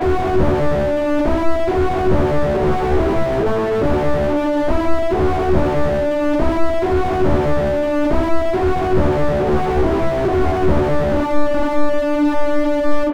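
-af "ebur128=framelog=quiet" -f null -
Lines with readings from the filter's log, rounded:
Integrated loudness:
  I:         -17.7 LUFS
  Threshold: -27.7 LUFS
Loudness range:
  LRA:         0.5 LU
  Threshold: -37.7 LUFS
  LRA low:   -17.9 LUFS
  LRA high:  -17.4 LUFS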